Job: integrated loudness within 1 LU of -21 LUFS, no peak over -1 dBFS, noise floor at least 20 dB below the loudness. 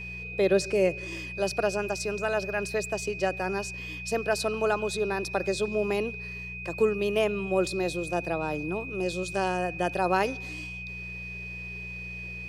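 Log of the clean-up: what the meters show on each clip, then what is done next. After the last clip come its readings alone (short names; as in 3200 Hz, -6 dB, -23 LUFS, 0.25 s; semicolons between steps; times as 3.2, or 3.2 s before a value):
hum 60 Hz; harmonics up to 180 Hz; hum level -40 dBFS; steady tone 2500 Hz; tone level -37 dBFS; loudness -29.0 LUFS; peak -11.0 dBFS; loudness target -21.0 LUFS
-> de-hum 60 Hz, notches 3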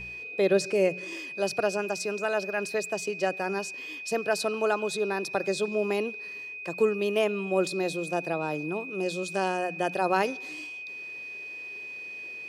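hum none; steady tone 2500 Hz; tone level -37 dBFS
-> notch 2500 Hz, Q 30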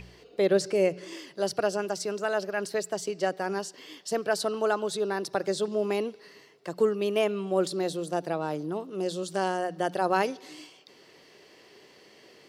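steady tone none; loudness -29.0 LUFS; peak -11.0 dBFS; loudness target -21.0 LUFS
-> gain +8 dB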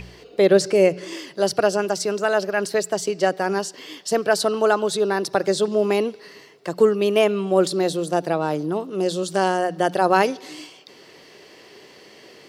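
loudness -21.0 LUFS; peak -3.0 dBFS; noise floor -48 dBFS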